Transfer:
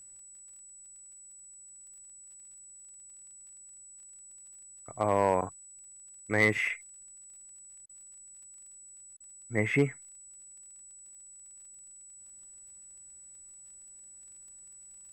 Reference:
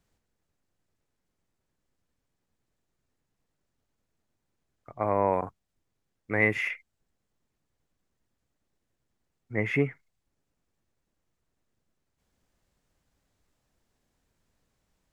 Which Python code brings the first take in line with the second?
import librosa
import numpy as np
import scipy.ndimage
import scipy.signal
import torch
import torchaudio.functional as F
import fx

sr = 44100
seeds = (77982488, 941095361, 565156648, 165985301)

y = fx.fix_declip(x, sr, threshold_db=-15.0)
y = fx.fix_declick_ar(y, sr, threshold=6.5)
y = fx.notch(y, sr, hz=7900.0, q=30.0)
y = fx.fix_interpolate(y, sr, at_s=(7.86, 9.17), length_ms=32.0)